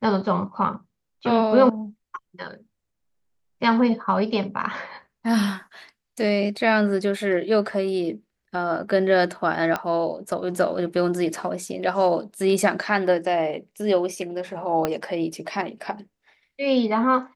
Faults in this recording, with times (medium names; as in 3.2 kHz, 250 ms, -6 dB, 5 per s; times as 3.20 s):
9.76 s: pop -11 dBFS
14.85 s: pop -9 dBFS